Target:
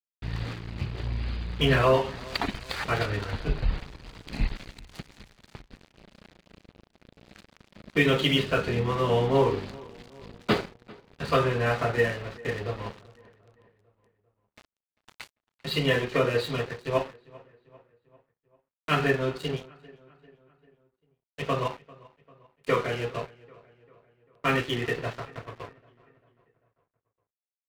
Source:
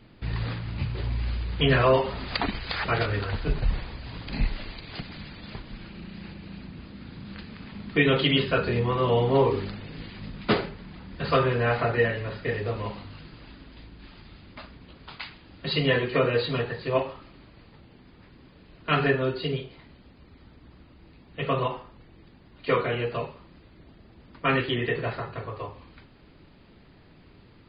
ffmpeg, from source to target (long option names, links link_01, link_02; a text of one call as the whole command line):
ffmpeg -i in.wav -filter_complex "[0:a]aeval=exprs='sgn(val(0))*max(abs(val(0))-0.0141,0)':channel_layout=same,asplit=2[link_01][link_02];[link_02]adelay=395,lowpass=frequency=3300:poles=1,volume=-22.5dB,asplit=2[link_03][link_04];[link_04]adelay=395,lowpass=frequency=3300:poles=1,volume=0.54,asplit=2[link_05][link_06];[link_06]adelay=395,lowpass=frequency=3300:poles=1,volume=0.54,asplit=2[link_07][link_08];[link_08]adelay=395,lowpass=frequency=3300:poles=1,volume=0.54[link_09];[link_03][link_05][link_07][link_09]amix=inputs=4:normalize=0[link_10];[link_01][link_10]amix=inputs=2:normalize=0" out.wav